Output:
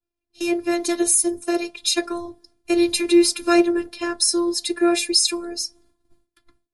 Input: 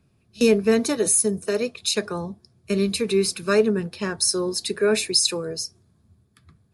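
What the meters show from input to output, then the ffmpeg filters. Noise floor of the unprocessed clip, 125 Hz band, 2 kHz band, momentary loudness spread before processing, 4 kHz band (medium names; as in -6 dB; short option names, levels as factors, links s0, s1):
-64 dBFS, under -15 dB, +1.0 dB, 11 LU, +2.5 dB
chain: -af "afftfilt=real='hypot(re,im)*cos(PI*b)':imag='0':win_size=512:overlap=0.75,agate=range=0.0224:threshold=0.00126:ratio=3:detection=peak,dynaudnorm=f=120:g=11:m=5.31,volume=0.891"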